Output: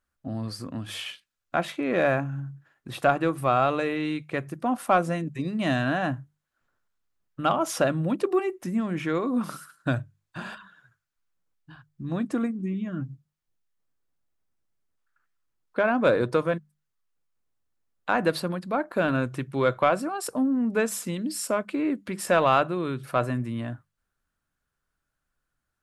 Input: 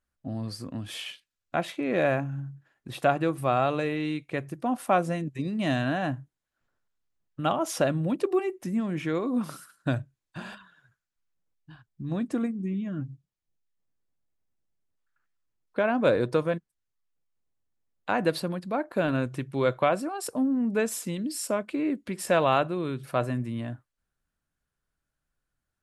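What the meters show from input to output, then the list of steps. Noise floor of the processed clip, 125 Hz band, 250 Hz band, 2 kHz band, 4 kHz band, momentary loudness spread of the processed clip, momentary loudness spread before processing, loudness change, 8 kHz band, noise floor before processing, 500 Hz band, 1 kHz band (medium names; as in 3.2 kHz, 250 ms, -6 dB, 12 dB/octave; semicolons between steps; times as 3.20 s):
-82 dBFS, +0.5 dB, +1.0 dB, +3.5 dB, +1.5 dB, 13 LU, 13 LU, +2.0 dB, +1.5 dB, -85 dBFS, +1.5 dB, +3.0 dB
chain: peaking EQ 1.3 kHz +4.5 dB 0.8 oct; hum notches 50/100/150/200 Hz; in parallel at -7.5 dB: saturation -17.5 dBFS, distortion -14 dB; on the sum: trim -1.5 dB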